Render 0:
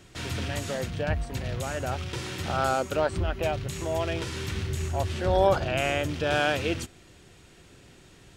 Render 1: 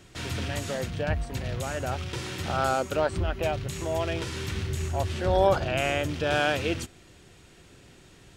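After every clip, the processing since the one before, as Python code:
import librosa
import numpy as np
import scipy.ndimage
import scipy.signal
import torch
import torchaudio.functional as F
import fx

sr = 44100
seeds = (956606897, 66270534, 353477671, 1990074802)

y = x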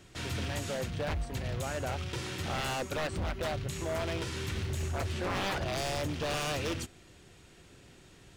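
y = 10.0 ** (-24.5 / 20.0) * (np.abs((x / 10.0 ** (-24.5 / 20.0) + 3.0) % 4.0 - 2.0) - 1.0)
y = y * librosa.db_to_amplitude(-3.0)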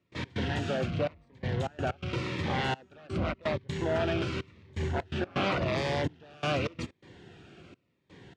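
y = fx.step_gate(x, sr, bpm=126, pattern='.x.xxxxxx...xx', floor_db=-24.0, edge_ms=4.5)
y = fx.bandpass_edges(y, sr, low_hz=110.0, high_hz=2800.0)
y = fx.notch_cascade(y, sr, direction='falling', hz=0.89)
y = y * librosa.db_to_amplitude(7.5)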